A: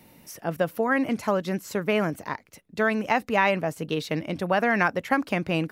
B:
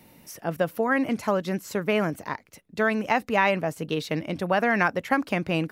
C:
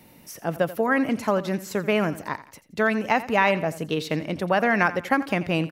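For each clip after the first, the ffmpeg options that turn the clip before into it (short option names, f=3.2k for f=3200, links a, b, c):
-af anull
-af "aecho=1:1:86|172|258:0.158|0.0602|0.0229,volume=1.5dB"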